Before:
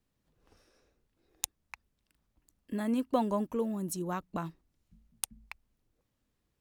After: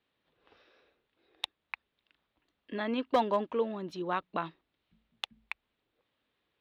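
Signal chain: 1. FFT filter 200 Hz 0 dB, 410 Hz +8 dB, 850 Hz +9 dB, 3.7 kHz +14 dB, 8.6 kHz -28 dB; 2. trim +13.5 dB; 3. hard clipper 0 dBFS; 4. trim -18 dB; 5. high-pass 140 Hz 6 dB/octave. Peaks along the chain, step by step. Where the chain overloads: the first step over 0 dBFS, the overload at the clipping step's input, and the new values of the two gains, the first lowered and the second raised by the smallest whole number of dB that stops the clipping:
-7.0 dBFS, +6.5 dBFS, 0.0 dBFS, -18.0 dBFS, -16.0 dBFS; step 2, 6.5 dB; step 2 +6.5 dB, step 4 -11 dB

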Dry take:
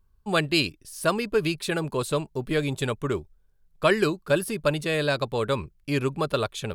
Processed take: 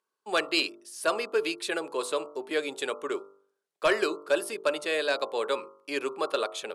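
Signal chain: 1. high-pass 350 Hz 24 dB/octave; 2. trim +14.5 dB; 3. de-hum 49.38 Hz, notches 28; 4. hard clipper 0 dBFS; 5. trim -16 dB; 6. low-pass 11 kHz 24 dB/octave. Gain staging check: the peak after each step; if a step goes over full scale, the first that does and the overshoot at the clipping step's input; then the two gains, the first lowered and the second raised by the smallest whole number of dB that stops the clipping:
-7.5 dBFS, +7.0 dBFS, +7.0 dBFS, 0.0 dBFS, -16.0 dBFS, -15.0 dBFS; step 2, 7.0 dB; step 2 +7.5 dB, step 5 -9 dB

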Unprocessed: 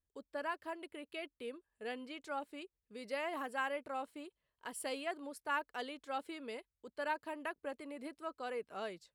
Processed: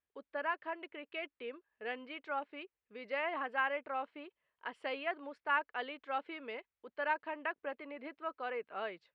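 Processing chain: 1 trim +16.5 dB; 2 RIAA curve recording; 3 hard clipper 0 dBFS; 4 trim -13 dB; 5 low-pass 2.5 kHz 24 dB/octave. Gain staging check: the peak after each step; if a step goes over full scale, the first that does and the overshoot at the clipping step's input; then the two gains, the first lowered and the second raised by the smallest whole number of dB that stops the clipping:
-8.5 dBFS, -4.0 dBFS, -4.0 dBFS, -17.0 dBFS, -20.0 dBFS; nothing clips

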